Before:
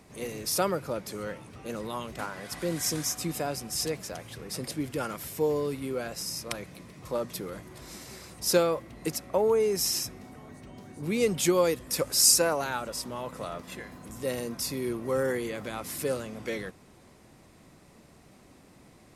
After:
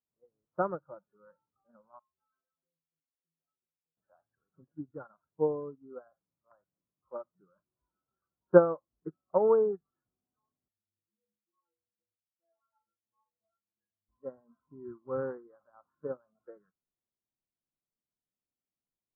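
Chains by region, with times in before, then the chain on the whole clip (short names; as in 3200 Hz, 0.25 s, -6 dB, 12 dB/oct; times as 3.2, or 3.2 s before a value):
1.99–3.97 compressor 20:1, threshold -35 dBFS + metallic resonator 78 Hz, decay 0.59 s, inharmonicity 0.03
10.68–14.09 low shelf 220 Hz +11 dB + compressor, threshold -34 dBFS + metallic resonator 100 Hz, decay 0.63 s, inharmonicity 0.03
whole clip: spectral noise reduction 19 dB; steep low-pass 1500 Hz 72 dB/oct; upward expander 2.5:1, over -41 dBFS; gain +6.5 dB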